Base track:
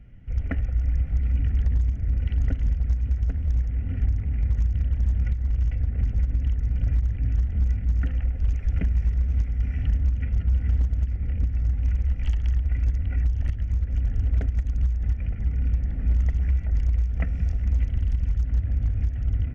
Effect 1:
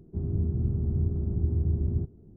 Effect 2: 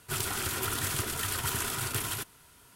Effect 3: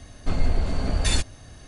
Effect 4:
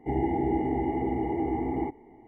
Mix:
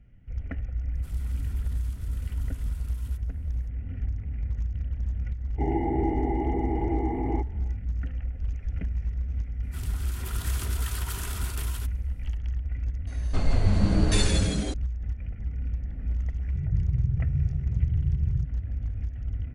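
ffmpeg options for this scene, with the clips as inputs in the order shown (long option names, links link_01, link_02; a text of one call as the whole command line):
ffmpeg -i bed.wav -i cue0.wav -i cue1.wav -i cue2.wav -i cue3.wav -filter_complex "[2:a]asplit=2[link_01][link_02];[0:a]volume=-7dB[link_03];[link_01]acompressor=threshold=-36dB:ratio=6:attack=3.2:release=140:knee=1:detection=peak[link_04];[link_02]dynaudnorm=framelen=120:gausssize=11:maxgain=10dB[link_05];[3:a]asplit=9[link_06][link_07][link_08][link_09][link_10][link_11][link_12][link_13][link_14];[link_07]adelay=162,afreqshift=-110,volume=-4dB[link_15];[link_08]adelay=324,afreqshift=-220,volume=-8.6dB[link_16];[link_09]adelay=486,afreqshift=-330,volume=-13.2dB[link_17];[link_10]adelay=648,afreqshift=-440,volume=-17.7dB[link_18];[link_11]adelay=810,afreqshift=-550,volume=-22.3dB[link_19];[link_12]adelay=972,afreqshift=-660,volume=-26.9dB[link_20];[link_13]adelay=1134,afreqshift=-770,volume=-31.5dB[link_21];[link_14]adelay=1296,afreqshift=-880,volume=-36.1dB[link_22];[link_06][link_15][link_16][link_17][link_18][link_19][link_20][link_21][link_22]amix=inputs=9:normalize=0[link_23];[1:a]lowshelf=frequency=190:width_type=q:width=3:gain=10.5[link_24];[link_04]atrim=end=2.75,asetpts=PTS-STARTPTS,volume=-16dB,afade=type=in:duration=0.004:curve=hsin,afade=type=out:start_time=2.746:duration=0.004:curve=hsin,adelay=940[link_25];[4:a]atrim=end=2.27,asetpts=PTS-STARTPTS,volume=-0.5dB,afade=type=in:duration=0.1,afade=type=out:start_time=2.17:duration=0.1,adelay=5520[link_26];[link_05]atrim=end=2.75,asetpts=PTS-STARTPTS,volume=-15dB,afade=type=in:duration=0.004:curve=hsin,afade=type=out:start_time=2.746:duration=0.004:curve=hsin,adelay=9630[link_27];[link_23]atrim=end=1.67,asetpts=PTS-STARTPTS,volume=-2dB,afade=type=in:duration=0.004:curve=hsin,afade=type=out:start_time=1.666:duration=0.004:curve=hsin,adelay=13070[link_28];[link_24]atrim=end=2.36,asetpts=PTS-STARTPTS,volume=-13.5dB,afade=type=in:duration=0.004:curve=hsin,afade=type=out:start_time=2.356:duration=0.004:curve=hsin,adelay=16390[link_29];[link_03][link_25][link_26][link_27][link_28][link_29]amix=inputs=6:normalize=0" out.wav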